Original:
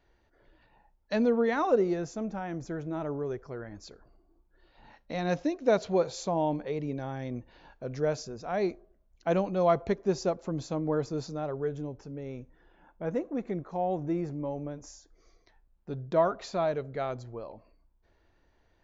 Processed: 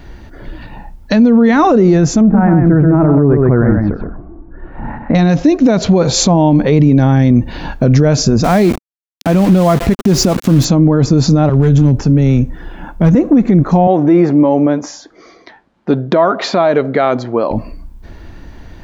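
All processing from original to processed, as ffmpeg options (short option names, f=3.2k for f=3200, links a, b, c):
-filter_complex "[0:a]asettb=1/sr,asplit=3[a][b][c];[a]atrim=end=2.214[d];[b]atrim=start=2.21:end=5.15,asetpts=PTS-STARTPTS,afade=t=in:d=0.004:c=qsin,afade=t=out:st=2.936:d=0.004:c=qsin,lowpass=f=1.7k:w=0.5412,lowpass=f=1.7k:w=1.3066,aecho=1:1:126:0.562,atrim=end_sample=129654[e];[c]atrim=start=5.146[f];[d][e]acrossfade=d=0.004:c1=hsin:c2=qsin[g];[g][f]acrossfade=d=0.004:c1=qsin:c2=hsin,asettb=1/sr,asplit=3[h][i][j];[h]atrim=end=8.444[k];[i]atrim=start=8.44:end=10.65,asetpts=PTS-STARTPTS,afade=t=in:d=0.004:c=qsin,afade=t=out:st=2.206:d=0.004:c=qsin,acompressor=threshold=-35dB:ratio=5:attack=3.2:release=140:knee=1:detection=peak,aeval=exprs='val(0)*gte(abs(val(0)),0.00473)':c=same[l];[j]atrim=start=10.646[m];[k][l]acrossfade=d=0.004:c1=hsin:c2=qsin[n];[n][m]acrossfade=d=0.004:c1=qsin:c2=hsin,asettb=1/sr,asplit=3[o][p][q];[o]atrim=end=11.494[r];[p]atrim=start=11.49:end=13.15,asetpts=PTS-STARTPTS,afade=t=in:d=0.004:c=qsin,afade=t=out:st=1.656:d=0.004:c=qsin,equalizer=f=220:t=o:w=2.5:g=-2.5,acrossover=split=190|3000[s][t][u];[t]acompressor=threshold=-46dB:ratio=2.5:attack=3.2:release=140:knee=2.83:detection=peak[v];[s][v][u]amix=inputs=3:normalize=0,volume=35.5dB,asoftclip=hard,volume=-35.5dB[w];[q]atrim=start=13.146[x];[r][w]acrossfade=d=0.004:c1=hsin:c2=qsin[y];[y][x]acrossfade=d=0.004:c1=qsin:c2=hsin,asettb=1/sr,asplit=3[z][aa][ab];[z]atrim=end=13.874[ac];[aa]atrim=start=13.87:end=17.51,asetpts=PTS-STARTPTS,afade=t=in:d=0.004:c=qsin,afade=t=out:st=3.636:d=0.004:c=qsin,highpass=370,lowpass=3.6k,bandreject=f=2.6k:w=19[ad];[ab]atrim=start=17.506[ae];[ac][ad]acrossfade=d=0.004:c1=hsin:c2=qsin[af];[af][ae]acrossfade=d=0.004:c1=qsin:c2=hsin,lowshelf=f=330:t=q:w=1.5:g=7,acompressor=threshold=-31dB:ratio=2.5,alimiter=level_in=29.5dB:limit=-1dB:release=50:level=0:latency=1,volume=-1dB"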